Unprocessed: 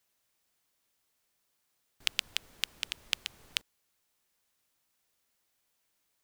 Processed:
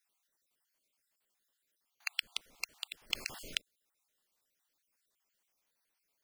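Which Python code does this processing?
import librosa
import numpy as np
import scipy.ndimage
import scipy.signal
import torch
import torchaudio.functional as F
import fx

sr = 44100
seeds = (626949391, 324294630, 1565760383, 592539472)

y = fx.spec_dropout(x, sr, seeds[0], share_pct=46)
y = fx.peak_eq(y, sr, hz=78.0, db=-10.5, octaves=1.9)
y = fx.env_flatten(y, sr, amount_pct=50, at=(3.1, 3.55))
y = F.gain(torch.from_numpy(y), -2.0).numpy()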